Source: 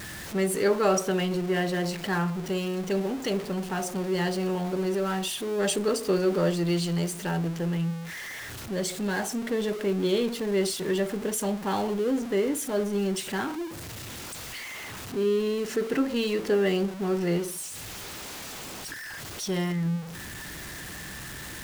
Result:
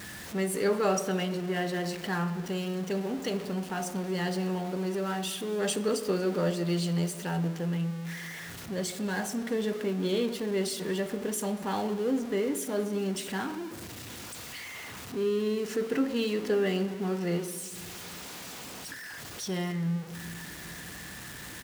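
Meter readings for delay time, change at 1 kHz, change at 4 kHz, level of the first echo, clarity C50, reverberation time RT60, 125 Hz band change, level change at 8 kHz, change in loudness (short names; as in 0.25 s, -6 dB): 0.233 s, -3.0 dB, -3.0 dB, -23.0 dB, 13.5 dB, 1.7 s, -2.5 dB, -3.5 dB, -3.0 dB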